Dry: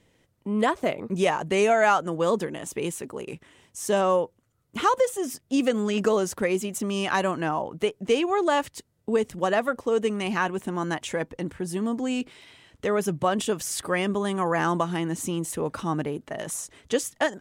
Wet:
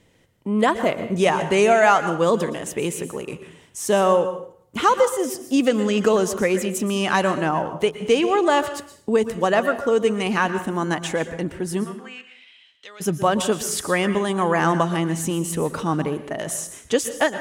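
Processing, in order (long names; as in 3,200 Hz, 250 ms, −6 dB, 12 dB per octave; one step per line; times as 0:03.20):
0:11.83–0:13.00: resonant band-pass 1,400 Hz → 4,500 Hz, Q 2.7
dense smooth reverb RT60 0.56 s, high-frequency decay 0.85×, pre-delay 105 ms, DRR 10.5 dB
level +4.5 dB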